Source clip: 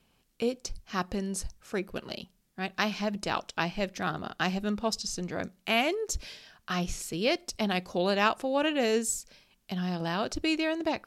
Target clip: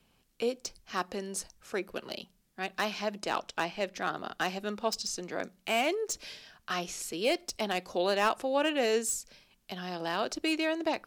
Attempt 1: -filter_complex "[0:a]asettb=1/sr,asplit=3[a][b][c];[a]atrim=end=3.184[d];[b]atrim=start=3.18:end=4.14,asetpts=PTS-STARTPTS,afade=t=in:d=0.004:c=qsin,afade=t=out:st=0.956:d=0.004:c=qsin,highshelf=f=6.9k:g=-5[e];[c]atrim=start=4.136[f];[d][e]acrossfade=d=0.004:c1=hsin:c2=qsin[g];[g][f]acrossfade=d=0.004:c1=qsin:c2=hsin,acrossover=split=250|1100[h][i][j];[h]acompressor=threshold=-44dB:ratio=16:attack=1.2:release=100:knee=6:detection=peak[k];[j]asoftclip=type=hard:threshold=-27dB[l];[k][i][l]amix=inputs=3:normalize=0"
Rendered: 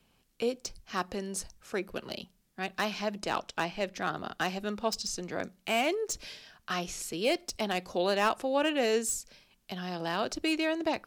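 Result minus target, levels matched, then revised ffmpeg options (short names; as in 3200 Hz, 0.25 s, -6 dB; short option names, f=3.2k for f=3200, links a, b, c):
compressor: peak gain reduction -9.5 dB
-filter_complex "[0:a]asettb=1/sr,asplit=3[a][b][c];[a]atrim=end=3.184[d];[b]atrim=start=3.18:end=4.14,asetpts=PTS-STARTPTS,afade=t=in:d=0.004:c=qsin,afade=t=out:st=0.956:d=0.004:c=qsin,highshelf=f=6.9k:g=-5[e];[c]atrim=start=4.136[f];[d][e]acrossfade=d=0.004:c1=hsin:c2=qsin[g];[g][f]acrossfade=d=0.004:c1=qsin:c2=hsin,acrossover=split=250|1100[h][i][j];[h]acompressor=threshold=-54dB:ratio=16:attack=1.2:release=100:knee=6:detection=peak[k];[j]asoftclip=type=hard:threshold=-27dB[l];[k][i][l]amix=inputs=3:normalize=0"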